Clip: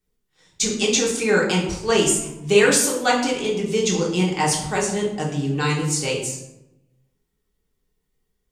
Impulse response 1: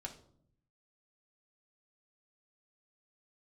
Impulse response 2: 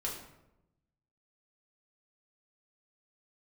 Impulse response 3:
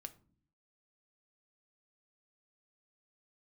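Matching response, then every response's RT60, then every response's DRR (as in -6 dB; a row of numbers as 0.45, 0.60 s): 2; 0.65 s, 0.90 s, not exponential; 0.0, -4.0, 8.0 dB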